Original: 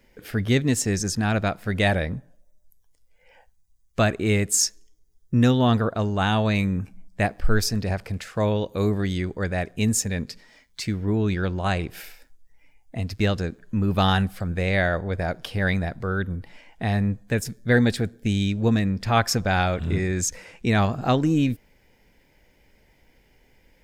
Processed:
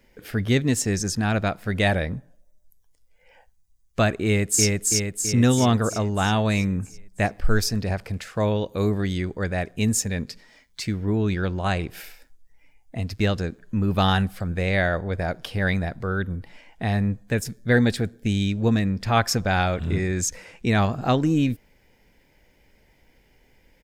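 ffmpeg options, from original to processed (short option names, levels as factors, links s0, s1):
-filter_complex "[0:a]asplit=2[s0][s1];[s1]afade=t=in:st=4.25:d=0.01,afade=t=out:st=4.66:d=0.01,aecho=0:1:330|660|990|1320|1650|1980|2310|2640|2970:0.841395|0.504837|0.302902|0.181741|0.109045|0.0654269|0.0392561|0.0235537|0.0141322[s2];[s0][s2]amix=inputs=2:normalize=0"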